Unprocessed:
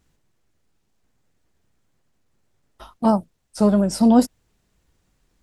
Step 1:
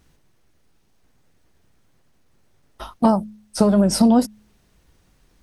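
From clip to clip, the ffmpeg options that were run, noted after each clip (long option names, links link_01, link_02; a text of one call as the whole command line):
ffmpeg -i in.wav -af "acompressor=threshold=-18dB:ratio=12,bandreject=frequency=7300:width=9.2,bandreject=frequency=106.2:width_type=h:width=4,bandreject=frequency=212.4:width_type=h:width=4,volume=7.5dB" out.wav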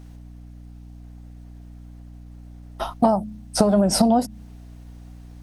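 ffmpeg -i in.wav -af "equalizer=frequency=720:width_type=o:width=0.47:gain=9.5,acompressor=threshold=-18dB:ratio=6,aeval=exprs='val(0)+0.00631*(sin(2*PI*60*n/s)+sin(2*PI*2*60*n/s)/2+sin(2*PI*3*60*n/s)/3+sin(2*PI*4*60*n/s)/4+sin(2*PI*5*60*n/s)/5)':channel_layout=same,volume=4dB" out.wav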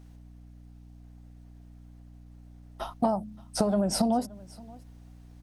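ffmpeg -i in.wav -af "aecho=1:1:574:0.0708,volume=-8dB" out.wav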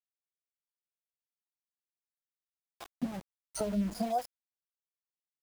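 ffmpeg -i in.wav -filter_complex "[0:a]afftfilt=real='re*pow(10,21/40*sin(2*PI*(1.8*log(max(b,1)*sr/1024/100)/log(2)-(0.7)*(pts-256)/sr)))':imag='im*pow(10,21/40*sin(2*PI*(1.8*log(max(b,1)*sr/1024/100)/log(2)-(0.7)*(pts-256)/sr)))':win_size=1024:overlap=0.75,acrossover=split=440[link_01][link_02];[link_01]aeval=exprs='val(0)*(1-1/2+1/2*cos(2*PI*1.3*n/s))':channel_layout=same[link_03];[link_02]aeval=exprs='val(0)*(1-1/2-1/2*cos(2*PI*1.3*n/s))':channel_layout=same[link_04];[link_03][link_04]amix=inputs=2:normalize=0,aeval=exprs='val(0)*gte(abs(val(0)),0.0224)':channel_layout=same,volume=-8dB" out.wav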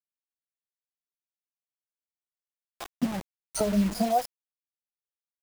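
ffmpeg -i in.wav -af "acrusher=bits=8:dc=4:mix=0:aa=0.000001,volume=7dB" out.wav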